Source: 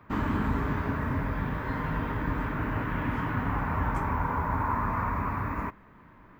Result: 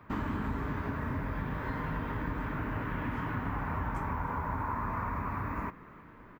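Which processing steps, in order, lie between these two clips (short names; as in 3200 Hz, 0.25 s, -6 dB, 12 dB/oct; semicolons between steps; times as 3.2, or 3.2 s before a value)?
compressor 2.5:1, threshold -33 dBFS, peak gain reduction 7 dB; frequency-shifting echo 0.309 s, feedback 51%, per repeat +88 Hz, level -20 dB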